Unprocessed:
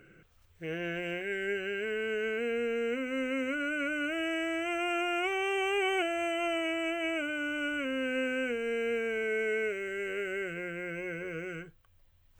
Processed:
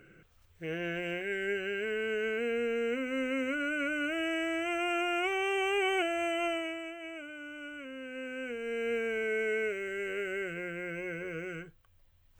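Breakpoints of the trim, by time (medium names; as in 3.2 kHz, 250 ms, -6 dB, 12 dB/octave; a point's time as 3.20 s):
6.46 s 0 dB
6.94 s -10.5 dB
8.09 s -10.5 dB
8.93 s -0.5 dB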